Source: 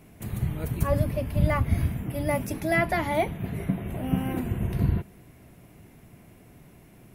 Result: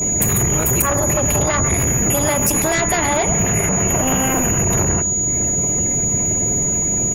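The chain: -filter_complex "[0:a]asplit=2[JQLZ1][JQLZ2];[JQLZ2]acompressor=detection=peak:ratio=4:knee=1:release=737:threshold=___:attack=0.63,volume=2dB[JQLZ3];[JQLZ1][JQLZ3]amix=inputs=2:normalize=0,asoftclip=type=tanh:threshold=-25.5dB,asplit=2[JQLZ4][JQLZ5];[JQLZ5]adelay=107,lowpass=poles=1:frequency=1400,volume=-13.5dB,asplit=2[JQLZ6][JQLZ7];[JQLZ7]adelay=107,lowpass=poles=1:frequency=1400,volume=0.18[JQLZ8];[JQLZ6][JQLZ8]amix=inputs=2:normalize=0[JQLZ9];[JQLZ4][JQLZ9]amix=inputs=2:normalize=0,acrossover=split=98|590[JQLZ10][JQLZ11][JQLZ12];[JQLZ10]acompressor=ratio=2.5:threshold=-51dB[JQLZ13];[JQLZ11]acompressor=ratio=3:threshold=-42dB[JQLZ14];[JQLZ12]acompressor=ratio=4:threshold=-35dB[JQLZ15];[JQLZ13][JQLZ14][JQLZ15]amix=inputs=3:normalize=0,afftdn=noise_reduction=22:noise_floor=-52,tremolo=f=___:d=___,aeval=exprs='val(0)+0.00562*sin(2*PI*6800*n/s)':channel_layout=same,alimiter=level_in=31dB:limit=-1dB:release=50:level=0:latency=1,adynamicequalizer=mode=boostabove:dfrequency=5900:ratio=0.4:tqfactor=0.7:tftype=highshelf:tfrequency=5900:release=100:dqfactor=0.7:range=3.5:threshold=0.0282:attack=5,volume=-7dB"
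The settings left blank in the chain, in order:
-33dB, 270, 0.71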